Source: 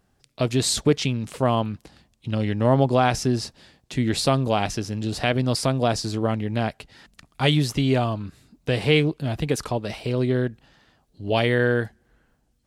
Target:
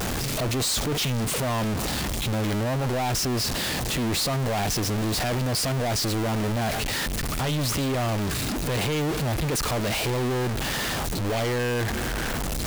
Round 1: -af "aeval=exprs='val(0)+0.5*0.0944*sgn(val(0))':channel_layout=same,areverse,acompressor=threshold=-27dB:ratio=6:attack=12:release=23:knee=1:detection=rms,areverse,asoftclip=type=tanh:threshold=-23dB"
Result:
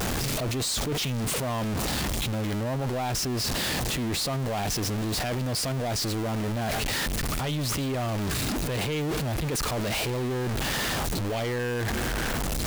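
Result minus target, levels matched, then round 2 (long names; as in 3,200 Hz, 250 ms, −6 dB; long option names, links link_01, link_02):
downward compressor: peak gain reduction +6.5 dB
-af "aeval=exprs='val(0)+0.5*0.0944*sgn(val(0))':channel_layout=same,areverse,acompressor=threshold=-19.5dB:ratio=6:attack=12:release=23:knee=1:detection=rms,areverse,asoftclip=type=tanh:threshold=-23dB"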